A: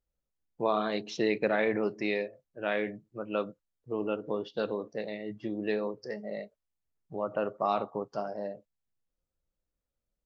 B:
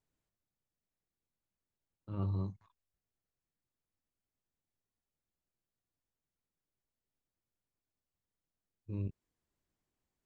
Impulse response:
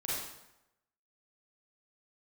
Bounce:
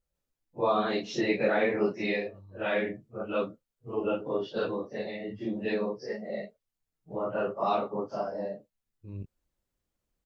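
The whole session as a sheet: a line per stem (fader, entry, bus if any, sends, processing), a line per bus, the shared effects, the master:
+2.0 dB, 0.00 s, no send, random phases in long frames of 100 ms
−0.5 dB, 0.15 s, no send, automatic ducking −17 dB, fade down 0.35 s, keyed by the first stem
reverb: not used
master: no processing

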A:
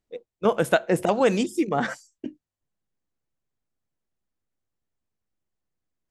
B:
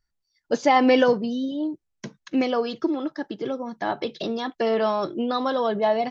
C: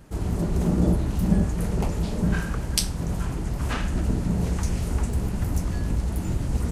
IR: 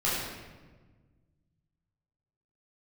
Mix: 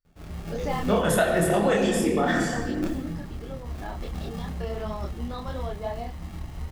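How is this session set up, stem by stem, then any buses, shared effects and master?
+2.5 dB, 0.45 s, send −10 dB, hollow resonant body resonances 1,800/3,400 Hz, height 13 dB; level that may fall only so fast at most 100 dB per second
−9.0 dB, 0.00 s, no send, no processing
−6.5 dB, 0.05 s, send −18 dB, tuned comb filter 78 Hz, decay 0.16 s, harmonics all, mix 70%; sample-rate reduction 1,000 Hz, jitter 0%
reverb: on, RT60 1.3 s, pre-delay 10 ms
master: multi-voice chorus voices 4, 1.3 Hz, delay 27 ms, depth 3.2 ms; downward compressor 2.5 to 1, threshold −21 dBFS, peak gain reduction 8 dB

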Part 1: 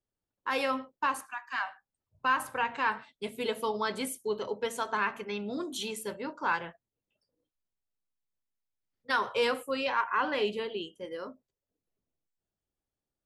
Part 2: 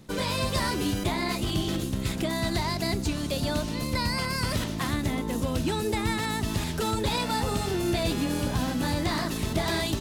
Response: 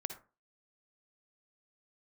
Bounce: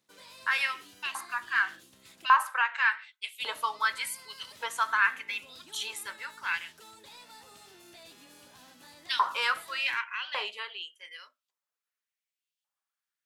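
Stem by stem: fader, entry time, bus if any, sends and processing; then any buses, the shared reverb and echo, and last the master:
+1.0 dB, 0.00 s, send −23.5 dB, low-shelf EQ 260 Hz −10 dB; auto-filter high-pass saw up 0.87 Hz 950–3,200 Hz
−17.0 dB, 0.00 s, muted 0:02.26–0:03.40, no send, high-pass filter 1,400 Hz 6 dB per octave; soft clipping −26 dBFS, distortion −19 dB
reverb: on, RT60 0.35 s, pre-delay 48 ms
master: no processing

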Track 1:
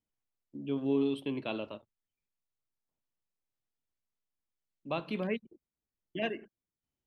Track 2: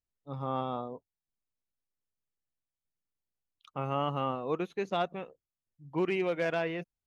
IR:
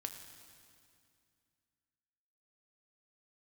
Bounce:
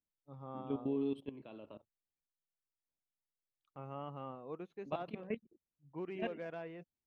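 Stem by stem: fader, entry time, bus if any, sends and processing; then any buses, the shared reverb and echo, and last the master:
−2.0 dB, 0.00 s, no send, output level in coarse steps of 16 dB
−12.5 dB, 0.00 s, no send, noise gate −52 dBFS, range −8 dB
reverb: not used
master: high-shelf EQ 2,200 Hz −11 dB

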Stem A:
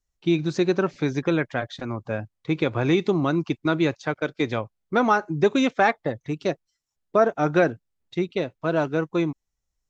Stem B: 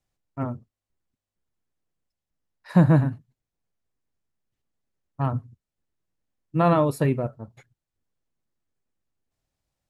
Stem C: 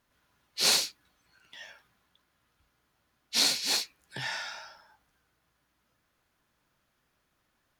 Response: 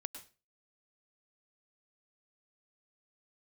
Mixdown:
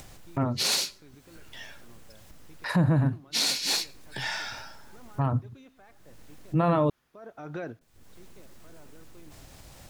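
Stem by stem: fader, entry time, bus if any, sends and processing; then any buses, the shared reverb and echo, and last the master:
−7.5 dB, 0.00 s, send −21.5 dB, brickwall limiter −19.5 dBFS, peak gain reduction 13.5 dB; automatic ducking −23 dB, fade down 0.25 s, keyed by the second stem
+1.5 dB, 0.00 s, muted 0:06.90–0:07.81, no send, upward compression, threshold −25 dBFS
+1.5 dB, 0.00 s, send −15 dB, no processing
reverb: on, RT60 0.35 s, pre-delay 96 ms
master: brickwall limiter −15.5 dBFS, peak gain reduction 9.5 dB

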